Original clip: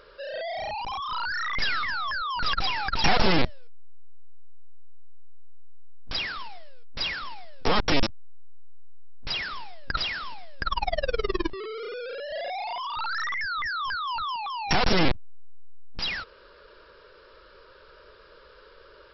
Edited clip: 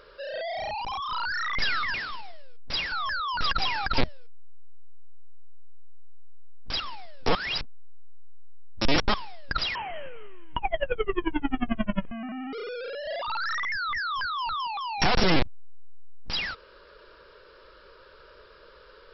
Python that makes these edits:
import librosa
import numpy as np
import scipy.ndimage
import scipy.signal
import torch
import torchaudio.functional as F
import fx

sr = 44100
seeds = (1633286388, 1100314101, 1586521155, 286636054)

y = fx.edit(x, sr, fx.cut(start_s=3.0, length_s=0.39),
    fx.move(start_s=6.21, length_s=0.98, to_s=1.94),
    fx.reverse_span(start_s=7.74, length_s=1.79),
    fx.speed_span(start_s=10.14, length_s=1.64, speed=0.59),
    fx.cut(start_s=12.47, length_s=0.44), tone=tone)